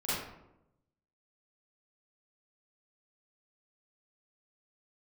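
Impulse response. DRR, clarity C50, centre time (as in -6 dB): -12.5 dB, -3.5 dB, 83 ms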